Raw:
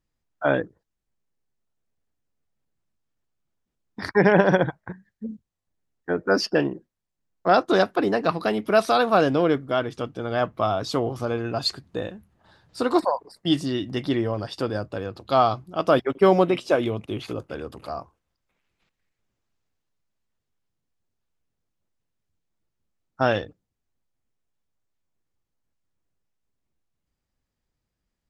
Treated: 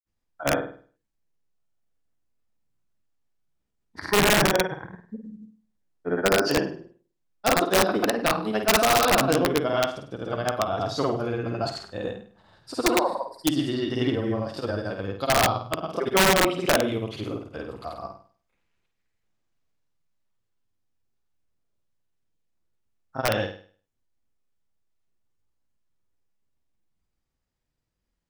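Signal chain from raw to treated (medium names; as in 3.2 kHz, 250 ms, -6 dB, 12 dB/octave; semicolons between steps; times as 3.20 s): granulator 100 ms, grains 23 per s, pitch spread up and down by 0 st; flutter echo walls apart 8.7 m, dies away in 0.44 s; integer overflow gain 12 dB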